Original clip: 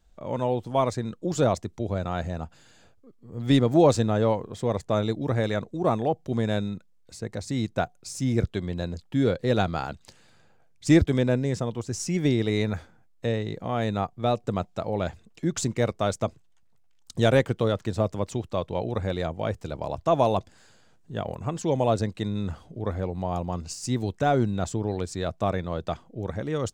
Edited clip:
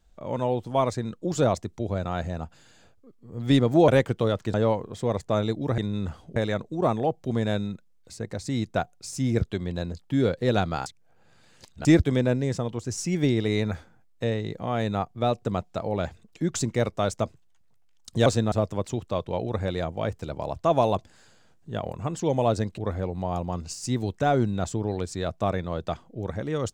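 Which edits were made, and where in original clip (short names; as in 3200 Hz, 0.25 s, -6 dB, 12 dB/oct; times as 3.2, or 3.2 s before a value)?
3.88–4.14 swap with 17.28–17.94
9.88–10.87 reverse
22.2–22.78 move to 5.38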